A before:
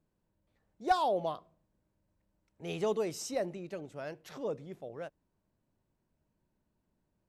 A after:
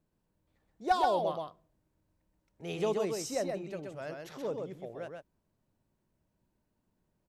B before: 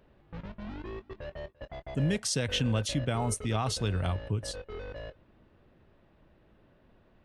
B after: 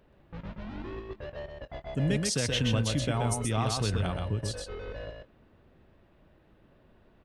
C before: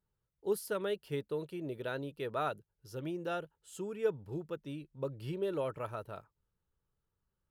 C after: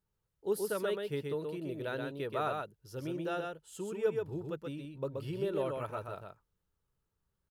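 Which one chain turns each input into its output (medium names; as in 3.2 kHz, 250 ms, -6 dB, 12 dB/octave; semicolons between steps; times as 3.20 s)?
delay 127 ms -4 dB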